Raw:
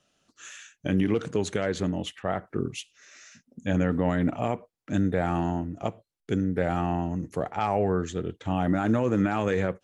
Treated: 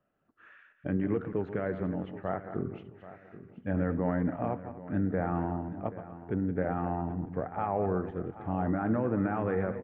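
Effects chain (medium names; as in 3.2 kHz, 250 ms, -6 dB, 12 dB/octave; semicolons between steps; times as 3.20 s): backward echo that repeats 121 ms, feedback 40%, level -10 dB; low-pass 1.8 kHz 24 dB/octave; feedback delay 780 ms, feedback 31%, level -15.5 dB; trim -5 dB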